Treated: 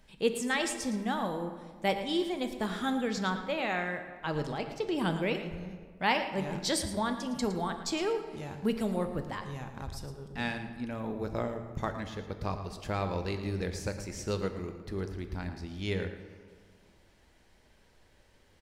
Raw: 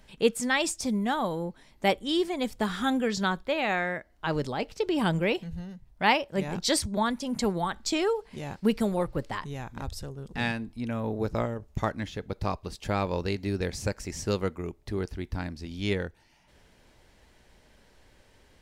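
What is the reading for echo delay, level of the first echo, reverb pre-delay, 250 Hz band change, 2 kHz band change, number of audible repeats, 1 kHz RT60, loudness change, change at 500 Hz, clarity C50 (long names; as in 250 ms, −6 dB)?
112 ms, −12.0 dB, 5 ms, −4.0 dB, −4.0 dB, 1, 1.7 s, −4.0 dB, −4.0 dB, 7.5 dB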